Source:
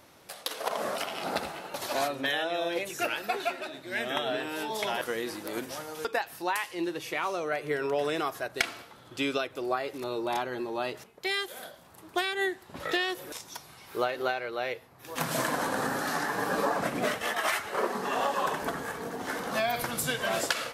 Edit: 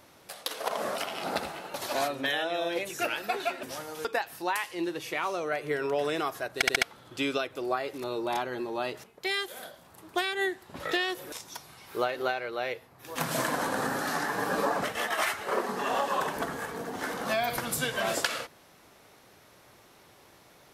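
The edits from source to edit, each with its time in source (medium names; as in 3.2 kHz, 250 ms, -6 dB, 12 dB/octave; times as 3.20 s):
3.63–5.63 s: delete
8.55 s: stutter in place 0.07 s, 4 plays
16.84–17.10 s: delete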